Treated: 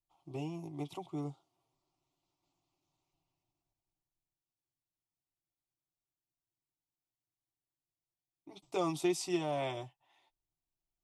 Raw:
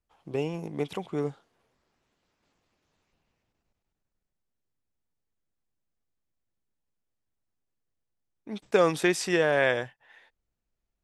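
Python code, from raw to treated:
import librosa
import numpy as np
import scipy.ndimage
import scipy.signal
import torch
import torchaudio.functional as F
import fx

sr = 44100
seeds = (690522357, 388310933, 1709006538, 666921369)

y = fx.fixed_phaser(x, sr, hz=330.0, stages=8)
y = fx.notch_comb(y, sr, f0_hz=210.0)
y = y * 10.0 ** (-5.0 / 20.0)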